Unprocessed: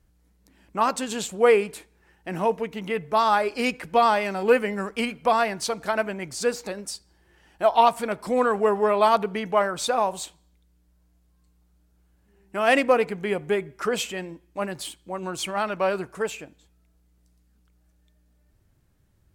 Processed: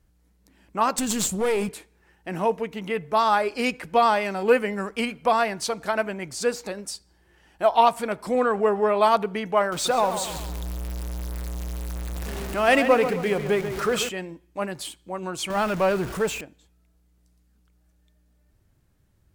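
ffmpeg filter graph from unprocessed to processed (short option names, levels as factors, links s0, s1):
-filter_complex "[0:a]asettb=1/sr,asplit=3[s0][s1][s2];[s0]atrim=end=0.984[s3];[s1]atrim=start=0.98:end=1.69,asetpts=PTS-STARTPTS,afade=t=in:d=0.004:c=qsin,afade=t=out:st=0.706:d=0.004:c=qsin,bass=f=250:g=13,treble=f=4000:g=12,acompressor=threshold=0.141:ratio=5:attack=3.2:release=140:knee=1:detection=peak,aeval=exprs='clip(val(0),-1,0.0668)':c=same[s4];[s2]atrim=start=1.686[s5];[s3][s4]acrossfade=d=0.004:c1=hsin:c2=qsin[s6];[s6][s5]acrossfade=d=0.004:c1=qsin:c2=hsin,asettb=1/sr,asplit=3[s7][s8][s9];[s7]atrim=end=8.354[s10];[s8]atrim=start=8.35:end=8.96,asetpts=PTS-STARTPTS,afade=t=in:d=0.004:c=qsin,afade=t=out:st=0.606:d=0.004:c=qsin,highshelf=f=6600:g=-7.5,bandreject=f=1000:w=19,acompressor=mode=upward:threshold=0.0708:ratio=2.5:attack=3.2:release=140:knee=2.83:detection=peak[s11];[s9]atrim=start=8.956[s12];[s10][s11]acrossfade=d=0.004:c1=hsin:c2=qsin[s13];[s13][s12]acrossfade=d=0.004:c1=qsin:c2=hsin,asettb=1/sr,asplit=3[s14][s15][s16];[s14]atrim=end=9.724[s17];[s15]atrim=start=9.72:end=14.09,asetpts=PTS-STARTPTS,afade=t=in:d=0.004:c=qsin,afade=t=out:st=4.366:d=0.004:c=qsin,aeval=exprs='val(0)+0.5*0.0251*sgn(val(0))':c=same,acompressor=mode=upward:threshold=0.0355:ratio=2.5:attack=3.2:release=140:knee=2.83:detection=peak,asplit=2[s18][s19];[s19]adelay=135,lowpass=f=3200:p=1,volume=0.355,asplit=2[s20][s21];[s21]adelay=135,lowpass=f=3200:p=1,volume=0.46,asplit=2[s22][s23];[s23]adelay=135,lowpass=f=3200:p=1,volume=0.46,asplit=2[s24][s25];[s25]adelay=135,lowpass=f=3200:p=1,volume=0.46,asplit=2[s26][s27];[s27]adelay=135,lowpass=f=3200:p=1,volume=0.46[s28];[s18][s20][s22][s24][s26][s28]amix=inputs=6:normalize=0,atrim=end_sample=192717[s29];[s16]atrim=start=14.086[s30];[s17][s29]acrossfade=d=0.004:c1=hsin:c2=qsin[s31];[s31][s30]acrossfade=d=0.004:c1=qsin:c2=hsin,asettb=1/sr,asplit=3[s32][s33][s34];[s32]atrim=end=15.504[s35];[s33]atrim=start=15.5:end=16.41,asetpts=PTS-STARTPTS,afade=t=in:d=0.004:c=qsin,afade=t=out:st=0.906:d=0.004:c=qsin,aeval=exprs='val(0)+0.5*0.0251*sgn(val(0))':c=same,lowshelf=f=200:g=8[s36];[s34]atrim=start=16.406[s37];[s35][s36]acrossfade=d=0.004:c1=hsin:c2=qsin[s38];[s38][s37]acrossfade=d=0.004:c1=qsin:c2=hsin"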